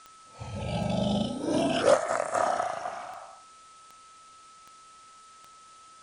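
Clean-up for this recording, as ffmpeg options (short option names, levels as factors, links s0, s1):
-af "adeclick=t=4,bandreject=f=1300:w=30,afftdn=nr=23:nf=-53"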